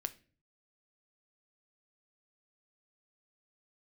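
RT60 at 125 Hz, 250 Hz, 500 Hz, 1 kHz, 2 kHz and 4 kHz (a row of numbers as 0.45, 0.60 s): 0.75, 0.60, 0.50, 0.30, 0.40, 0.35 s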